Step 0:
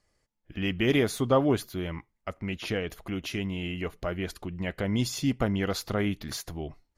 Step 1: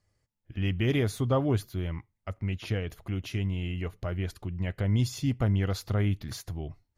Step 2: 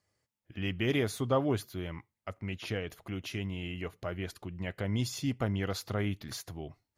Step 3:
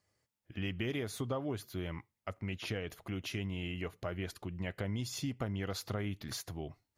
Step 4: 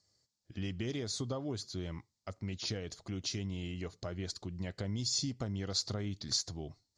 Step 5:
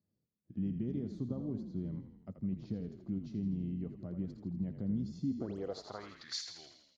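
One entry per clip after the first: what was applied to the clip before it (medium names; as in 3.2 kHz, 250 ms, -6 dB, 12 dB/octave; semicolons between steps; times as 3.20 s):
peaking EQ 100 Hz +13.5 dB 1 oct; trim -5 dB
high-pass 250 Hz 6 dB/octave
compression 6:1, threshold -33 dBFS, peak gain reduction 10.5 dB
FFT filter 220 Hz 0 dB, 2.8 kHz -7 dB, 4.4 kHz +12 dB, 7.4 kHz +8 dB, 13 kHz -28 dB
painted sound rise, 5.38–5.58 s, 240–9300 Hz -49 dBFS; frequency-shifting echo 82 ms, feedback 59%, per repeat -37 Hz, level -8.5 dB; band-pass sweep 200 Hz -> 2.2 kHz, 5.20–6.38 s; trim +6.5 dB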